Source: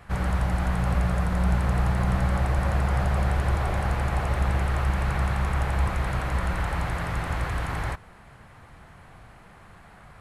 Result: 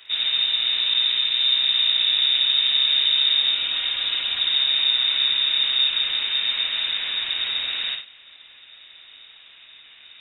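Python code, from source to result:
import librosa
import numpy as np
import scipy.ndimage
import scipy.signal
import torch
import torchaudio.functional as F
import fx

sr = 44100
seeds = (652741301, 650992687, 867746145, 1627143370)

p1 = fx.lower_of_two(x, sr, delay_ms=4.4, at=(3.51, 4.51))
p2 = fx.freq_invert(p1, sr, carrier_hz=3700)
y = p2 + fx.echo_multitap(p2, sr, ms=(57, 94), db=(-6.0, -13.5), dry=0)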